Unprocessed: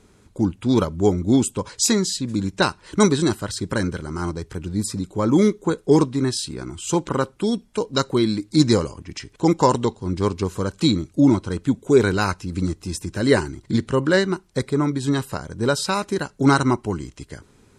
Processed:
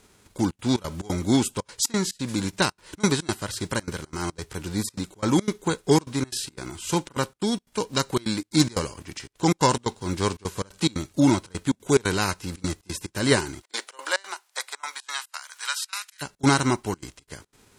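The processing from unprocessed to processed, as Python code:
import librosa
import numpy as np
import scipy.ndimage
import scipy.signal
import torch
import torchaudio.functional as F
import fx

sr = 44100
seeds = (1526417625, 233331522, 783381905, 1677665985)

y = fx.envelope_flatten(x, sr, power=0.6)
y = fx.highpass(y, sr, hz=fx.line((13.61, 480.0), (16.21, 1500.0)), slope=24, at=(13.61, 16.21), fade=0.02)
y = fx.step_gate(y, sr, bpm=178, pattern='xxxxxx.xx.xx.', floor_db=-24.0, edge_ms=4.5)
y = y * 10.0 ** (-3.5 / 20.0)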